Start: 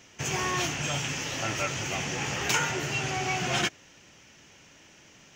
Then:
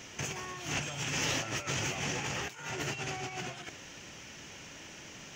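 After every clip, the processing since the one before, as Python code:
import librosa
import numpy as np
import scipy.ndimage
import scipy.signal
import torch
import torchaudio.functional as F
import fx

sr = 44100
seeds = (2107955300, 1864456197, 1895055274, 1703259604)

y = fx.over_compress(x, sr, threshold_db=-35.0, ratio=-0.5)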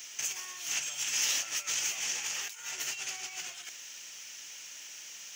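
y = np.diff(x, prepend=0.0)
y = fx.dmg_noise_colour(y, sr, seeds[0], colour='violet', level_db=-78.0)
y = y * 10.0 ** (8.5 / 20.0)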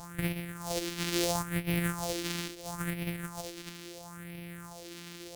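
y = np.r_[np.sort(x[:len(x) // 256 * 256].reshape(-1, 256), axis=1).ravel(), x[len(x) // 256 * 256:]]
y = fx.phaser_stages(y, sr, stages=4, low_hz=100.0, high_hz=1100.0, hz=0.74, feedback_pct=50)
y = y * 10.0 ** (4.0 / 20.0)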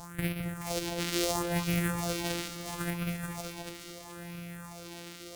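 y = fx.echo_alternate(x, sr, ms=213, hz=1400.0, feedback_pct=57, wet_db=-4.0)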